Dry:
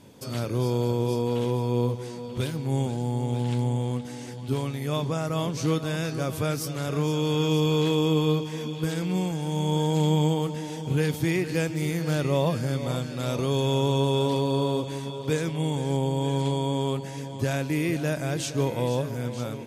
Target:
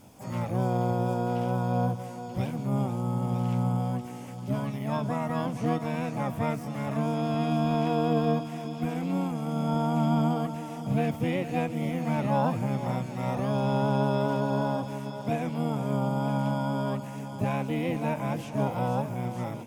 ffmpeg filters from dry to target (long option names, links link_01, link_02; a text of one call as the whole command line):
ffmpeg -i in.wav -filter_complex "[0:a]asplit=2[link_01][link_02];[link_02]asetrate=66075,aresample=44100,atempo=0.66742,volume=-2dB[link_03];[link_01][link_03]amix=inputs=2:normalize=0,equalizer=frequency=160:width_type=o:width=0.67:gain=-4,equalizer=frequency=400:width_type=o:width=0.67:gain=-11,equalizer=frequency=1600:width_type=o:width=0.67:gain=-7,equalizer=frequency=4000:width_type=o:width=0.67:gain=-9,acrossover=split=2900[link_04][link_05];[link_05]acompressor=threshold=-54dB:ratio=4:attack=1:release=60[link_06];[link_04][link_06]amix=inputs=2:normalize=0" out.wav